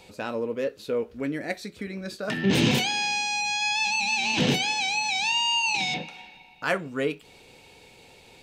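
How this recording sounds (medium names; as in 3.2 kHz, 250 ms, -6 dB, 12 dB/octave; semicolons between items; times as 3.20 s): noise floor -53 dBFS; spectral tilt -3.0 dB/octave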